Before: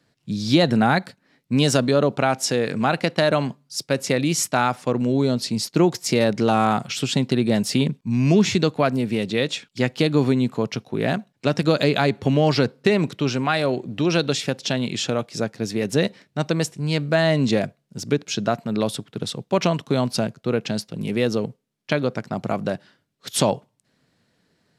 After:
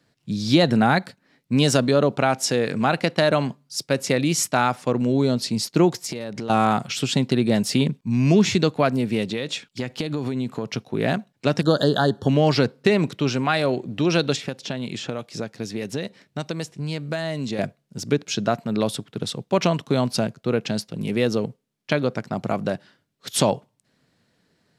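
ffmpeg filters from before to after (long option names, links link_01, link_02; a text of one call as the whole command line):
ffmpeg -i in.wav -filter_complex "[0:a]asettb=1/sr,asplit=3[link_01][link_02][link_03];[link_01]atrim=end=5.924[link_04];[link_02]atrim=start=5.92:end=6.5,asetpts=PTS-STARTPTS,afade=type=in:duration=0.004:curve=qsin,afade=type=out:start_time=0.576:duration=0.004:curve=qsin,acompressor=threshold=-26dB:ratio=10:attack=3.2:release=140:knee=1:detection=peak[link_05];[link_03]atrim=start=6.496[link_06];[link_04][link_05]acrossfade=duration=0.004:curve1=hsin:curve2=qsin[link_07];[link_07][link_06]acrossfade=duration=0.004:curve1=qsin:curve2=hsin,asettb=1/sr,asplit=3[link_08][link_09][link_10];[link_08]atrim=end=9.234[link_11];[link_09]atrim=start=9.23:end=10.68,asetpts=PTS-STARTPTS,afade=type=in:duration=0.004:curve=qsin,afade=type=out:start_time=1.446:duration=0.004:curve=qsin,acompressor=threshold=-21dB:ratio=10:attack=3.2:release=140:knee=1:detection=peak[link_12];[link_10]atrim=start=10.676[link_13];[link_11][link_12]acrossfade=duration=0.004:curve1=hsin:curve2=qsin[link_14];[link_14][link_13]acrossfade=duration=0.004:curve1=qsin:curve2=hsin,asettb=1/sr,asplit=3[link_15][link_16][link_17];[link_15]atrim=end=11.614[link_18];[link_16]atrim=start=11.61:end=12.29,asetpts=PTS-STARTPTS,afade=type=in:duration=0.004:curve=qsin,afade=type=out:start_time=0.676:duration=0.004:curve=qsin,asuperstop=centerf=2300:order=12:qfactor=2[link_19];[link_17]atrim=start=12.286[link_20];[link_18][link_19]acrossfade=duration=0.004:curve1=hsin:curve2=qsin[link_21];[link_21][link_20]acrossfade=duration=0.004:curve1=qsin:curve2=hsin,asettb=1/sr,asplit=3[link_22][link_23][link_24];[link_22]atrim=end=14.364[link_25];[link_23]atrim=start=14.36:end=17.59,asetpts=PTS-STARTPTS,afade=type=in:duration=0.004:curve=qsin,afade=type=out:start_time=3.226:duration=0.004:curve=qsin,acrossover=split=2400|5800[link_26][link_27][link_28];[link_26]acompressor=threshold=-26dB:ratio=4[link_29];[link_27]acompressor=threshold=-39dB:ratio=4[link_30];[link_28]acompressor=threshold=-46dB:ratio=4[link_31];[link_29][link_30][link_31]amix=inputs=3:normalize=0[link_32];[link_24]atrim=start=17.586[link_33];[link_25][link_32]acrossfade=duration=0.004:curve1=hsin:curve2=qsin[link_34];[link_34][link_33]acrossfade=duration=0.004:curve1=qsin:curve2=hsin" out.wav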